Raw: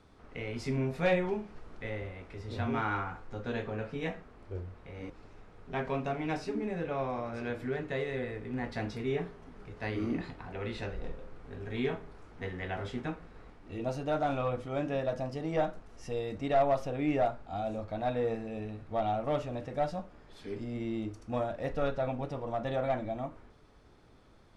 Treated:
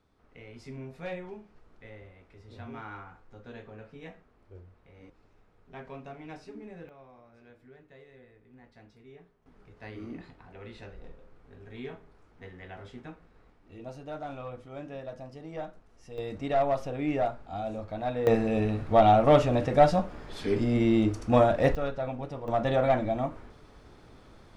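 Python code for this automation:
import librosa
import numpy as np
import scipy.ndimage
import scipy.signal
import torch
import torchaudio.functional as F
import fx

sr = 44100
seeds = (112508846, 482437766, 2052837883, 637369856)

y = fx.gain(x, sr, db=fx.steps((0.0, -10.0), (6.89, -19.5), (9.46, -8.0), (16.18, 0.5), (18.27, 12.0), (21.75, -0.5), (22.48, 7.0)))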